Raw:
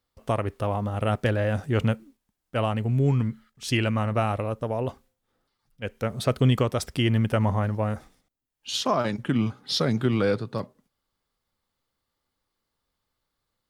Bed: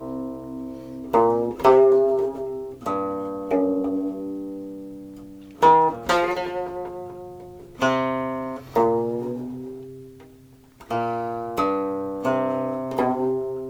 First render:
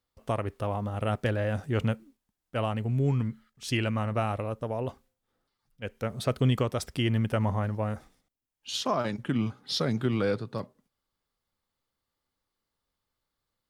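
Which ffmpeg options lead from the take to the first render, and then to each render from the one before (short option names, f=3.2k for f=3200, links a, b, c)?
-af "volume=-4dB"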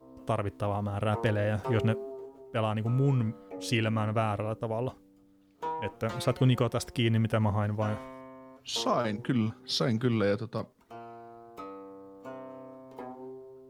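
-filter_complex "[1:a]volume=-20.5dB[a];[0:a][a]amix=inputs=2:normalize=0"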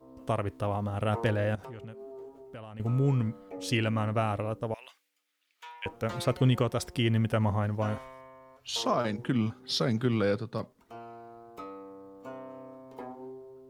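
-filter_complex "[0:a]asettb=1/sr,asplit=3[a][b][c];[a]atrim=end=1.554[d];[b]atrim=start=1.55:end=2.8,asetpts=PTS-STARTPTS,afade=t=in:d=0.004:c=qsin,afade=t=out:st=1.246:d=0.004:c=qsin,acompressor=threshold=-40dB:ratio=10:attack=3.2:release=140:knee=1:detection=peak[e];[c]atrim=start=2.796[f];[d][e]acrossfade=d=0.004:c1=hsin:c2=qsin[g];[g][f]acrossfade=d=0.004:c1=qsin:c2=hsin,asettb=1/sr,asplit=3[h][i][j];[h]atrim=end=4.744[k];[i]atrim=start=4.74:end=5.86,asetpts=PTS-STARTPTS,afade=t=in:d=0.004:c=qsin,afade=t=out:st=1.116:d=0.004:c=qsin,highpass=f=2.2k:t=q:w=1.8[l];[j]atrim=start=5.856[m];[k][l]acrossfade=d=0.004:c1=hsin:c2=qsin[n];[n][m]acrossfade=d=0.004:c1=qsin:c2=hsin,asettb=1/sr,asplit=3[o][p][q];[o]atrim=end=7.984[r];[p]atrim=start=7.98:end=8.84,asetpts=PTS-STARTPTS,afade=t=in:d=0.004:c=qsin,afade=t=out:st=0.856:d=0.004:c=qsin,equalizer=f=250:w=1.2:g=-12.5[s];[q]atrim=start=8.836[t];[r][s]acrossfade=d=0.004:c1=hsin:c2=qsin[u];[u][t]acrossfade=d=0.004:c1=qsin:c2=hsin"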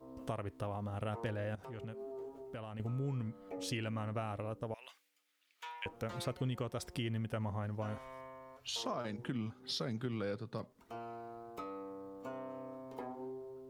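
-af "acompressor=threshold=-41dB:ratio=2.5"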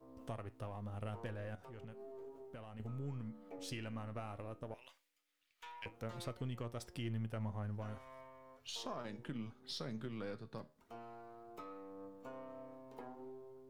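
-af "aeval=exprs='if(lt(val(0),0),0.708*val(0),val(0))':c=same,flanger=delay=8.5:depth=5.1:regen=79:speed=0.15:shape=sinusoidal"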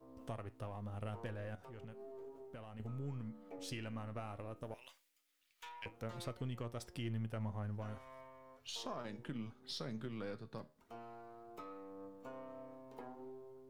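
-filter_complex "[0:a]asettb=1/sr,asplit=3[a][b][c];[a]atrim=end=4.564[d];[b]atrim=start=4.56:end=5.69,asetpts=PTS-STARTPTS,afade=t=in:d=0.004:c=qsin,afade=t=out:st=1.126:d=0.004:c=qsin,highshelf=f=4.5k:g=7[e];[c]atrim=start=5.686[f];[d][e]acrossfade=d=0.004:c1=hsin:c2=qsin[g];[g][f]acrossfade=d=0.004:c1=qsin:c2=hsin"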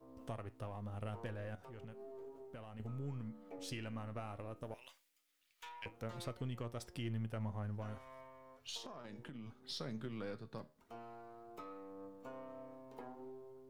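-filter_complex "[0:a]asettb=1/sr,asplit=3[a][b][c];[a]atrim=end=8.774[d];[b]atrim=start=8.77:end=9.64,asetpts=PTS-STARTPTS,afade=t=in:d=0.004:c=qsin,afade=t=out:st=0.866:d=0.004:c=qsin,acompressor=threshold=-45dB:ratio=6:attack=3.2:release=140:knee=1:detection=peak[e];[c]atrim=start=9.636[f];[d][e]acrossfade=d=0.004:c1=hsin:c2=qsin[g];[g][f]acrossfade=d=0.004:c1=qsin:c2=hsin"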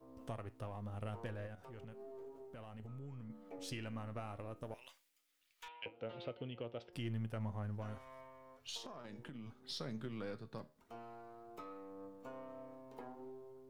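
-filter_complex "[0:a]asettb=1/sr,asplit=3[a][b][c];[a]atrim=end=1.464[d];[b]atrim=start=1.46:end=3.3,asetpts=PTS-STARTPTS,afade=t=in:d=0.004:c=qsin,afade=t=out:st=1.836:d=0.004:c=qsin,acompressor=threshold=-46dB:ratio=6:attack=3.2:release=140:knee=1:detection=peak[e];[c]atrim=start=3.296[f];[d][e]acrossfade=d=0.004:c1=hsin:c2=qsin[g];[g][f]acrossfade=d=0.004:c1=qsin:c2=hsin,asettb=1/sr,asplit=3[h][i][j];[h]atrim=end=5.684[k];[i]atrim=start=5.68:end=6.93,asetpts=PTS-STARTPTS,afade=t=in:d=0.004:c=qsin,afade=t=out:st=1.246:d=0.004:c=qsin,highpass=170,equalizer=f=200:t=q:w=4:g=-6,equalizer=f=510:t=q:w=4:g=5,equalizer=f=1.1k:t=q:w=4:g=-9,equalizer=f=1.8k:t=q:w=4:g=-7,equalizer=f=2.9k:t=q:w=4:g=7,lowpass=f=3.5k:w=0.5412,lowpass=f=3.5k:w=1.3066[l];[j]atrim=start=6.926[m];[k][l]acrossfade=d=0.004:c1=hsin:c2=qsin[n];[n][m]acrossfade=d=0.004:c1=qsin:c2=hsin"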